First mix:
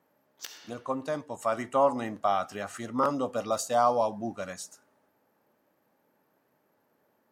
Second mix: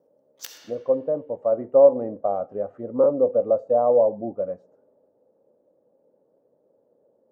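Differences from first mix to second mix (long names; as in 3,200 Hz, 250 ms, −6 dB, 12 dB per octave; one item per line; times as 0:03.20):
speech: add low-pass with resonance 520 Hz, resonance Q 5.6
background: add high-shelf EQ 6,900 Hz +8 dB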